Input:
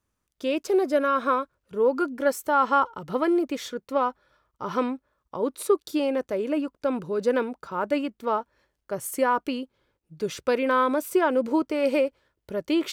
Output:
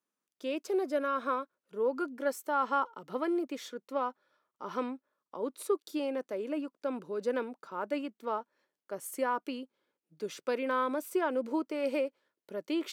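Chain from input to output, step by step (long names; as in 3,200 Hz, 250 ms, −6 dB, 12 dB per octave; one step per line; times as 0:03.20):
high-pass filter 200 Hz 24 dB per octave
level −8.5 dB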